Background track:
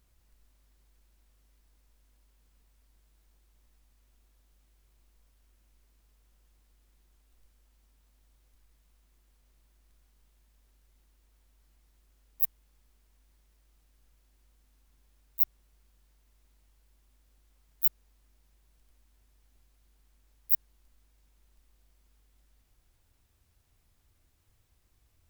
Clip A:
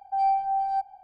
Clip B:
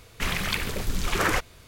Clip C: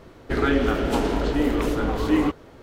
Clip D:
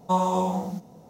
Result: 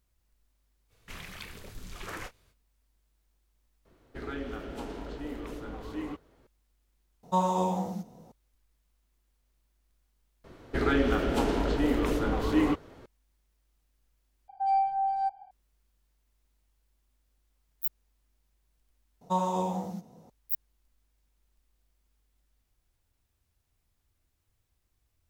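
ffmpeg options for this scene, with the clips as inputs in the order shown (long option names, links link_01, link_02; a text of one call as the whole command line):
ffmpeg -i bed.wav -i cue0.wav -i cue1.wav -i cue2.wav -i cue3.wav -filter_complex "[3:a]asplit=2[link_01][link_02];[4:a]asplit=2[link_03][link_04];[0:a]volume=-6.5dB[link_05];[2:a]asplit=2[link_06][link_07];[link_07]adelay=28,volume=-11dB[link_08];[link_06][link_08]amix=inputs=2:normalize=0[link_09];[link_05]asplit=4[link_10][link_11][link_12][link_13];[link_10]atrim=end=10.444[link_14];[link_02]atrim=end=2.62,asetpts=PTS-STARTPTS,volume=-4.5dB[link_15];[link_11]atrim=start=13.056:end=14.484[link_16];[1:a]atrim=end=1.03,asetpts=PTS-STARTPTS,volume=-2.5dB[link_17];[link_12]atrim=start=15.506:end=19.214[link_18];[link_04]atrim=end=1.09,asetpts=PTS-STARTPTS,volume=-5.5dB[link_19];[link_13]atrim=start=20.296[link_20];[link_09]atrim=end=1.67,asetpts=PTS-STARTPTS,volume=-16.5dB,afade=type=in:duration=0.05,afade=type=out:start_time=1.62:duration=0.05,adelay=880[link_21];[link_01]atrim=end=2.62,asetpts=PTS-STARTPTS,volume=-16.5dB,afade=type=in:duration=0.004:curve=hsin,afade=type=out:start_time=2.616:duration=0.004:curve=hsin,adelay=169785S[link_22];[link_03]atrim=end=1.09,asetpts=PTS-STARTPTS,volume=-3.5dB,afade=type=in:duration=0.004:curve=hsin,afade=type=out:start_time=1.086:duration=0.004:curve=hsin,adelay=7230[link_23];[link_14][link_15]acrossfade=duration=0.004:curve1=hsin:curve2=hsin[link_24];[link_24][link_16]acrossfade=duration=0.004:curve1=hsin:curve2=hsin[link_25];[link_25][link_17]acrossfade=duration=0.004:curve1=hsin:curve2=hsin[link_26];[link_26][link_18]acrossfade=duration=0.004:curve1=hsin:curve2=hsin[link_27];[link_27][link_19]acrossfade=duration=0.004:curve1=hsin:curve2=hsin[link_28];[link_28][link_20]acrossfade=duration=0.004:curve1=hsin:curve2=hsin[link_29];[link_29][link_21][link_22][link_23]amix=inputs=4:normalize=0" out.wav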